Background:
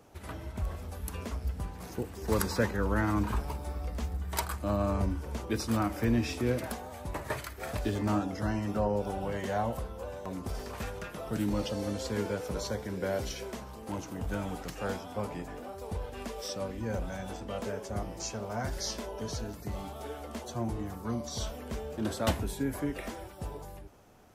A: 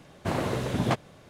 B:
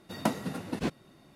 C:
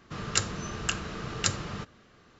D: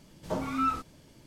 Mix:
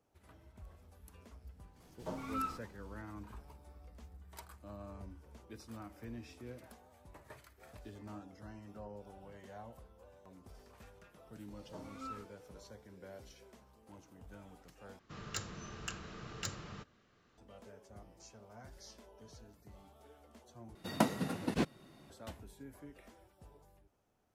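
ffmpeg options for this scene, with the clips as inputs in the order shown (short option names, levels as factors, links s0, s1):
-filter_complex "[4:a]asplit=2[s0][s1];[0:a]volume=0.106[s2];[3:a]asoftclip=type=tanh:threshold=0.15[s3];[s2]asplit=3[s4][s5][s6];[s4]atrim=end=14.994[s7];[s3]atrim=end=2.39,asetpts=PTS-STARTPTS,volume=0.266[s8];[s5]atrim=start=17.376:end=20.754[s9];[2:a]atrim=end=1.35,asetpts=PTS-STARTPTS,volume=0.841[s10];[s6]atrim=start=22.096[s11];[s0]atrim=end=1.26,asetpts=PTS-STARTPTS,volume=0.316,afade=t=in:d=0.004:c=hsin,afade=t=out:st=1.256:d=0.004:c=hsin,adelay=1760[s12];[s1]atrim=end=1.26,asetpts=PTS-STARTPTS,volume=0.126,afade=t=in:d=0.004:c=hsin,afade=t=out:st=1.256:d=0.004:c=hsin,adelay=11430[s13];[s7][s8]acrossfade=d=0.004:c1=hsin:c2=hsin[s14];[s14][s9]acrossfade=d=0.004:c1=hsin:c2=hsin[s15];[s15][s10]acrossfade=d=0.004:c1=hsin:c2=hsin[s16];[s16][s11]acrossfade=d=0.004:c1=hsin:c2=hsin[s17];[s17][s12][s13]amix=inputs=3:normalize=0"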